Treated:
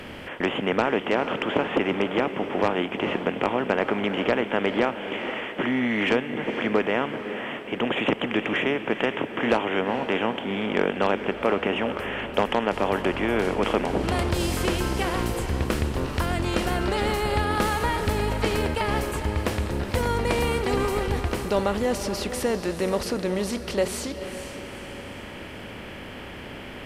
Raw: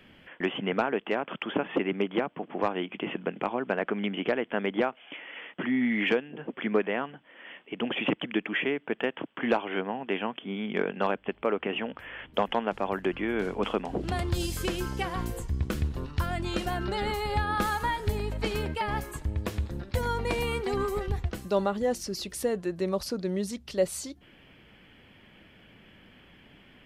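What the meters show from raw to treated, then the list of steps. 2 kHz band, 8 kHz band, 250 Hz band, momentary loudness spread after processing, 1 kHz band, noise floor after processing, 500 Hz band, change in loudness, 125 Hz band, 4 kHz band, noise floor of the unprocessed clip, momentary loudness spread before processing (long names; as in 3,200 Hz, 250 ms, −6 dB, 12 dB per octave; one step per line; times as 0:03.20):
+5.5 dB, +5.5 dB, +5.0 dB, 8 LU, +5.0 dB, −38 dBFS, +5.0 dB, +5.0 dB, +4.5 dB, +5.5 dB, −57 dBFS, 6 LU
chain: compressor on every frequency bin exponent 0.6
feedback delay with all-pass diffusion 460 ms, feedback 45%, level −10 dB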